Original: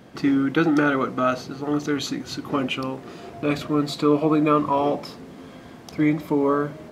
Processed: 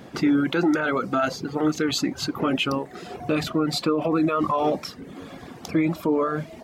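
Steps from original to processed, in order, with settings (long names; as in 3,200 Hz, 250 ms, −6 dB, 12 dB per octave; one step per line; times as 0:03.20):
brickwall limiter −17 dBFS, peak gain reduction 10 dB
reverb reduction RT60 0.77 s
wrong playback speed 24 fps film run at 25 fps
level +4.5 dB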